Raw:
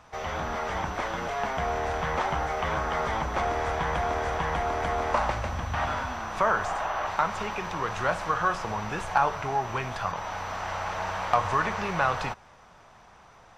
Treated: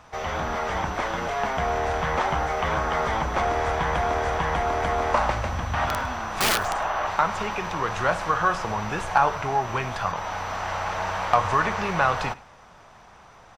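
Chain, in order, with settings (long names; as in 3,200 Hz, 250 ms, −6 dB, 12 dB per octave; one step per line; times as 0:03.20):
0:05.87–0:06.76: wrap-around overflow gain 19 dB
on a send: single-tap delay 105 ms −21 dB
on the sum: level +3.5 dB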